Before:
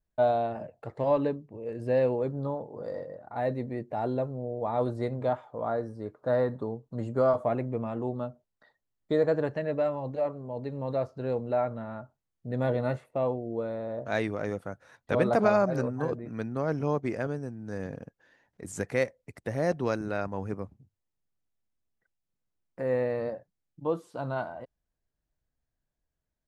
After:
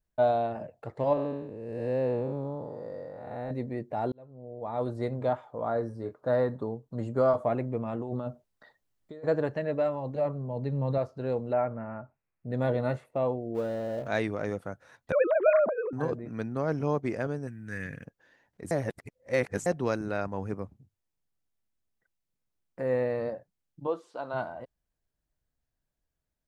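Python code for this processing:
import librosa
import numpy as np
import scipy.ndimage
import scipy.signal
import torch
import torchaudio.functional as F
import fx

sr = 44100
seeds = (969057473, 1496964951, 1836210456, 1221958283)

y = fx.spec_blur(x, sr, span_ms=299.0, at=(1.13, 3.51))
y = fx.doubler(y, sr, ms=26.0, db=-8, at=(5.73, 6.14))
y = fx.over_compress(y, sr, threshold_db=-36.0, ratio=-1.0, at=(7.82, 9.23), fade=0.02)
y = fx.peak_eq(y, sr, hz=150.0, db=9.5, octaves=0.77, at=(10.15, 10.98))
y = fx.resample_bad(y, sr, factor=8, down='none', up='filtered', at=(11.53, 12.5))
y = fx.law_mismatch(y, sr, coded='mu', at=(13.54, 14.06), fade=0.02)
y = fx.sine_speech(y, sr, at=(15.12, 15.93))
y = fx.curve_eq(y, sr, hz=(140.0, 250.0, 840.0, 1900.0, 2900.0, 5000.0, 8500.0), db=(0, -4, -12, 13, 7, -4, 7), at=(17.47, 18.05))
y = fx.bandpass_edges(y, sr, low_hz=380.0, high_hz=6700.0, at=(23.86, 24.33), fade=0.02)
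y = fx.edit(y, sr, fx.fade_in_span(start_s=4.12, length_s=0.98),
    fx.reverse_span(start_s=18.71, length_s=0.95), tone=tone)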